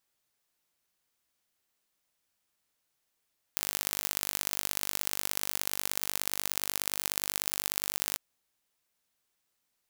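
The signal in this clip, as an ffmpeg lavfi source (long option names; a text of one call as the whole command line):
ffmpeg -f lavfi -i "aevalsrc='0.841*eq(mod(n,884),0)*(0.5+0.5*eq(mod(n,2652),0))':duration=4.61:sample_rate=44100" out.wav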